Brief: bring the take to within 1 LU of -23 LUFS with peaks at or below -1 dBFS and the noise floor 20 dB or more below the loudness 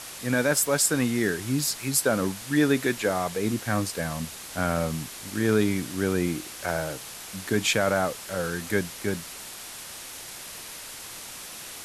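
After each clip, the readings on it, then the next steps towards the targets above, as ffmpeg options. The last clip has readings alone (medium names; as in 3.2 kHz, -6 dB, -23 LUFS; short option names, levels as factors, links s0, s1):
noise floor -41 dBFS; noise floor target -46 dBFS; loudness -26.0 LUFS; peak level -8.0 dBFS; loudness target -23.0 LUFS
-> -af "afftdn=nr=6:nf=-41"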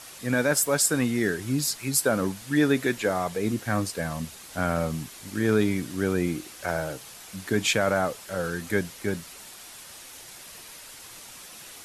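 noise floor -45 dBFS; noise floor target -47 dBFS
-> -af "afftdn=nr=6:nf=-45"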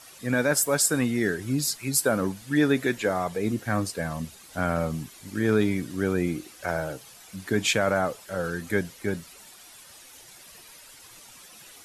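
noise floor -49 dBFS; loudness -26.5 LUFS; peak level -8.0 dBFS; loudness target -23.0 LUFS
-> -af "volume=1.5"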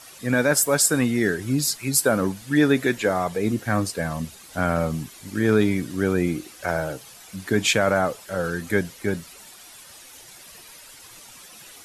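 loudness -23.0 LUFS; peak level -4.5 dBFS; noise floor -46 dBFS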